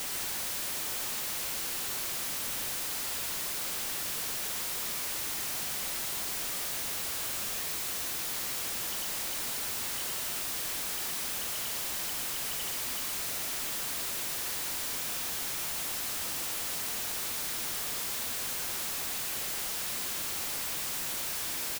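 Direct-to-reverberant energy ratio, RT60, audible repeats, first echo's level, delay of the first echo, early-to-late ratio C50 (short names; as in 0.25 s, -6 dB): none, none, 1, -5.5 dB, 0.117 s, none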